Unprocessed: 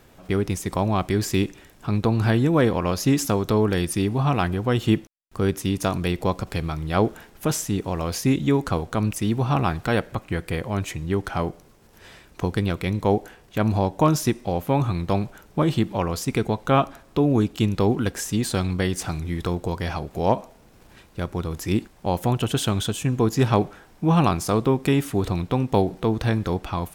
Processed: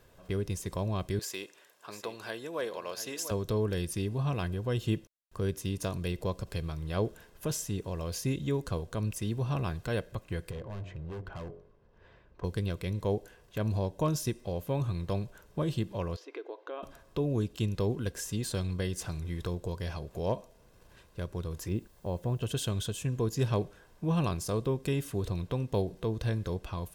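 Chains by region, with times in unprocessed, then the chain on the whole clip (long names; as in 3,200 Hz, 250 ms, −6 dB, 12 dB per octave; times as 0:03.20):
0:01.19–0:03.31: high-pass filter 540 Hz + single-tap delay 698 ms −11 dB
0:10.51–0:12.44: head-to-tape spacing loss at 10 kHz 35 dB + hum removal 46.46 Hz, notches 15 + gain into a clipping stage and back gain 28.5 dB
0:16.16–0:16.83: high-frequency loss of the air 270 metres + downward compressor 2.5 to 1, threshold −25 dBFS + linear-phase brick-wall high-pass 280 Hz
0:21.68–0:22.42: low-pass filter 1,200 Hz 6 dB per octave + bit-depth reduction 10 bits, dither triangular
whole clip: notch filter 2,200 Hz, Q 14; comb filter 1.9 ms, depth 42%; dynamic equaliser 1,100 Hz, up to −7 dB, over −37 dBFS, Q 0.71; level −8.5 dB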